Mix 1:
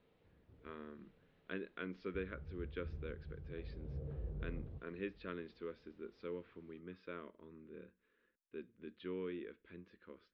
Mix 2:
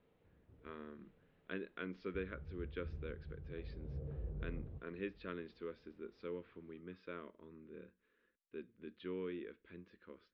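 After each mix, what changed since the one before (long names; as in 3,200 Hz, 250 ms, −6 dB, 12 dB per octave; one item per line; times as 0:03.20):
background: add high-frequency loss of the air 210 metres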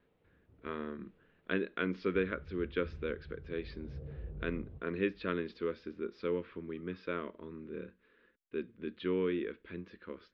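speech +10.5 dB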